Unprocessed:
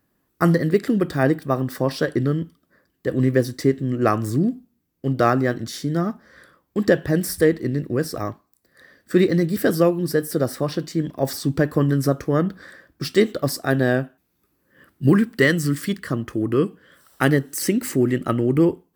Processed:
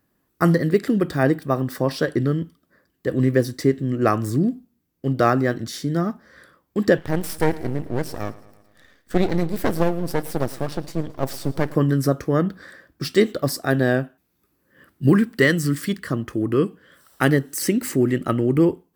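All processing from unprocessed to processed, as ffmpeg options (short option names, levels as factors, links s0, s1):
-filter_complex "[0:a]asettb=1/sr,asplit=3[s0][s1][s2];[s0]atrim=end=6.984[s3];[s1]atrim=start=6.98:end=11.75,asetpts=PTS-STARTPTS,afade=t=in:d=0.004:c=qsin,afade=t=out:st=4.766:d=0.004:c=qsin,aeval=exprs='max(val(0),0)':c=same,aecho=1:1:110|220|330|440|550:0.106|0.0636|0.0381|0.0229|0.0137,atrim=end_sample=210357[s4];[s2]atrim=start=11.746[s5];[s3][s4]acrossfade=d=0.004:c1=hsin:c2=qsin[s6];[s6][s5]acrossfade=d=0.004:c1=qsin:c2=hsin"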